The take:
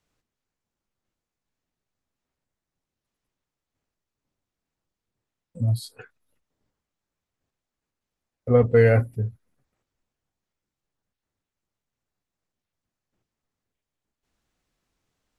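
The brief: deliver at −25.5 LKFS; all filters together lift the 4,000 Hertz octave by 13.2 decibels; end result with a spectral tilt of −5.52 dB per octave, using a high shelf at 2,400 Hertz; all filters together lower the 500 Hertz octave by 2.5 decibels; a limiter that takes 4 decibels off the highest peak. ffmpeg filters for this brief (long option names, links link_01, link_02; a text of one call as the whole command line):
ffmpeg -i in.wav -af "equalizer=frequency=500:width_type=o:gain=-3,highshelf=frequency=2400:gain=8,equalizer=frequency=4000:width_type=o:gain=8,volume=-1.5dB,alimiter=limit=-11.5dB:level=0:latency=1" out.wav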